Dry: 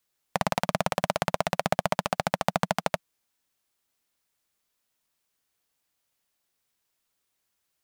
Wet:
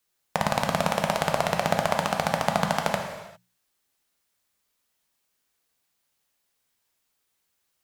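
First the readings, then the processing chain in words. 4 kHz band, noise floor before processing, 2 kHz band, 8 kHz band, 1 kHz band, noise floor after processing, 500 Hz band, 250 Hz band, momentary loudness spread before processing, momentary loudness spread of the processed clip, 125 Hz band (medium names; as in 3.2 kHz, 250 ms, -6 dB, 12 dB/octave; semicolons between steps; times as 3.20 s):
+3.0 dB, -79 dBFS, +3.0 dB, +3.0 dB, +3.0 dB, -76 dBFS, +2.5 dB, +2.5 dB, 4 LU, 6 LU, +3.0 dB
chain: hum notches 60/120/180 Hz; gated-style reverb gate 430 ms falling, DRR 2.5 dB; trim +1 dB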